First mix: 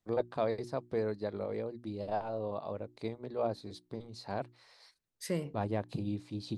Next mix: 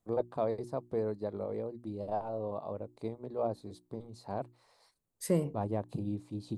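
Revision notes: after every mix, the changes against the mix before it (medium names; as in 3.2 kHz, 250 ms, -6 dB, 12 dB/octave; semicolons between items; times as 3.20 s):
second voice +5.5 dB; master: add high-order bell 2.9 kHz -9 dB 2.3 oct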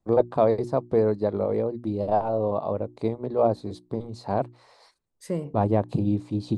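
first voice +12.0 dB; master: add distance through air 57 m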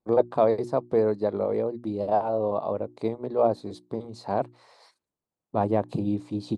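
second voice: entry +2.15 s; master: add high-pass 200 Hz 6 dB/octave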